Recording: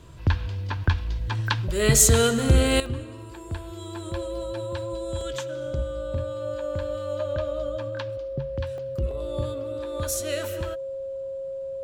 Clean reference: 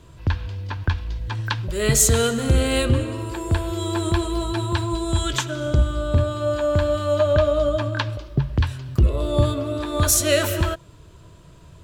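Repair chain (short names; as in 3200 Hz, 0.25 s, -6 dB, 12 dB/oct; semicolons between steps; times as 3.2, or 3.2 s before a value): notch 540 Hz, Q 30; interpolate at 2.86/5.21/8.78/9.11, 2.5 ms; gain 0 dB, from 2.8 s +11.5 dB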